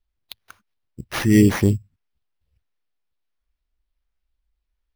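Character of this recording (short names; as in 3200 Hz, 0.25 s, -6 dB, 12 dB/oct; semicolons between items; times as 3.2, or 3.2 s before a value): phasing stages 4, 1.4 Hz, lowest notch 610–2500 Hz; aliases and images of a low sample rate 7800 Hz, jitter 0%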